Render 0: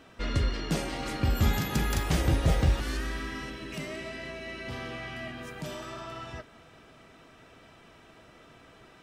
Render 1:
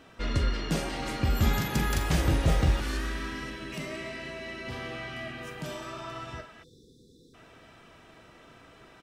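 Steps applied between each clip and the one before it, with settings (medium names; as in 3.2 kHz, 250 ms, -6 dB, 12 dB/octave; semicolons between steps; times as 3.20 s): doubling 43 ms -11 dB; repeats whose band climbs or falls 110 ms, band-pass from 1.2 kHz, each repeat 0.7 oct, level -6 dB; spectral selection erased 6.64–7.34 s, 530–3300 Hz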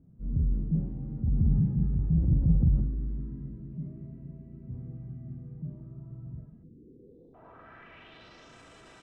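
transient shaper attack -8 dB, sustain +7 dB; low-pass sweep 160 Hz -> 7.9 kHz, 6.51–8.59 s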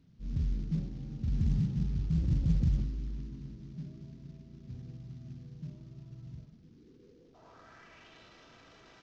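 CVSD coder 32 kbps; trim -4.5 dB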